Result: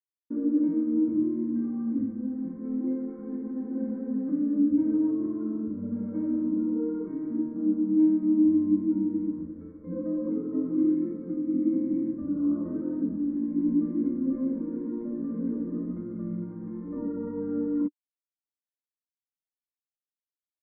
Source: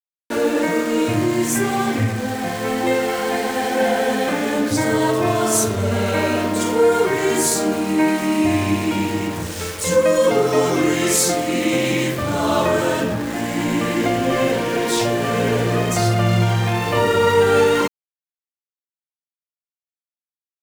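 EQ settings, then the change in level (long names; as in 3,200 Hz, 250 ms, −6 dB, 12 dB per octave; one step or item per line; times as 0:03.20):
formant resonators in series u
phaser with its sweep stopped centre 580 Hz, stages 8
phaser with its sweep stopped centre 2,600 Hz, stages 6
+3.5 dB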